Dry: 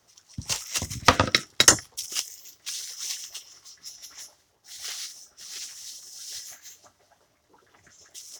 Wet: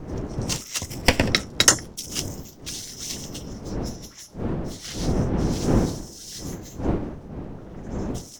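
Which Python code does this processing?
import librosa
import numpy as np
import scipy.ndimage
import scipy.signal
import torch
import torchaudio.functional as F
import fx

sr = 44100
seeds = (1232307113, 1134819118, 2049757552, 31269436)

y = fx.lower_of_two(x, sr, delay_ms=0.39, at=(0.9, 1.31))
y = fx.dmg_wind(y, sr, seeds[0], corner_hz=290.0, level_db=-29.0)
y = fx.high_shelf(y, sr, hz=11000.0, db=-7.5, at=(4.75, 5.53))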